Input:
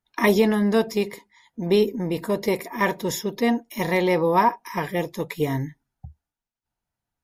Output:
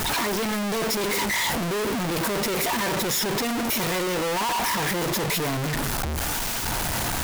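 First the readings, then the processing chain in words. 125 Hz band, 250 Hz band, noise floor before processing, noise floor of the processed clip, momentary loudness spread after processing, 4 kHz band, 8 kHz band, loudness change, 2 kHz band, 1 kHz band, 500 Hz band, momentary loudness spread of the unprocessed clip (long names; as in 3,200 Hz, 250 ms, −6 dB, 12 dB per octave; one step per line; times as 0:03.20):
0.0 dB, −4.0 dB, below −85 dBFS, −27 dBFS, 3 LU, +8.5 dB, +12.0 dB, −1.0 dB, +2.5 dB, −1.0 dB, −5.0 dB, 11 LU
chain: sign of each sample alone
low-shelf EQ 340 Hz −3.5 dB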